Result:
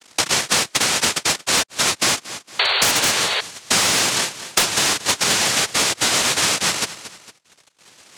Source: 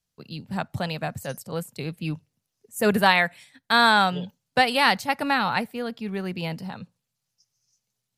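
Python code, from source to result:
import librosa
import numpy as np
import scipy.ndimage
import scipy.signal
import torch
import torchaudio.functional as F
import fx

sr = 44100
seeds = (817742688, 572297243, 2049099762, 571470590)

p1 = fx.dead_time(x, sr, dead_ms=0.17)
p2 = fx.rider(p1, sr, range_db=10, speed_s=0.5)
p3 = p1 + (p2 * 10.0 ** (-0.5 / 20.0))
p4 = fx.noise_vocoder(p3, sr, seeds[0], bands=1)
p5 = p4 + fx.echo_feedback(p4, sr, ms=228, feedback_pct=17, wet_db=-20.5, dry=0)
p6 = fx.spec_paint(p5, sr, seeds[1], shape='noise', start_s=2.59, length_s=0.82, low_hz=380.0, high_hz=4600.0, level_db=-25.0)
p7 = fx.fold_sine(p6, sr, drive_db=9, ceiling_db=0.5)
p8 = fx.band_squash(p7, sr, depth_pct=100)
y = p8 * 10.0 ** (-11.0 / 20.0)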